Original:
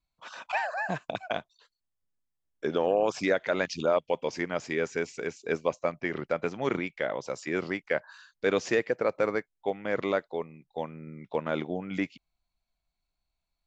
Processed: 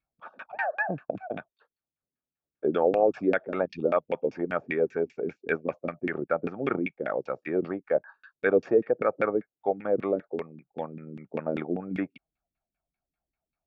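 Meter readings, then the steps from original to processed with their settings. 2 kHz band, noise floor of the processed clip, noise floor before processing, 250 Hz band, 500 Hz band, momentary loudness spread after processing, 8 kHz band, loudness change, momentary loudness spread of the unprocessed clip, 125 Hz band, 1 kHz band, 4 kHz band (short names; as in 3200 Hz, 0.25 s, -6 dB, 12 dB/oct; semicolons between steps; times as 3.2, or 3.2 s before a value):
-1.0 dB, under -85 dBFS, -84 dBFS, +2.5 dB, +2.0 dB, 13 LU, n/a, +1.5 dB, 9 LU, 0.0 dB, +0.5 dB, under -10 dB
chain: LFO low-pass saw down 5.1 Hz 210–2500 Hz; notch comb 1000 Hz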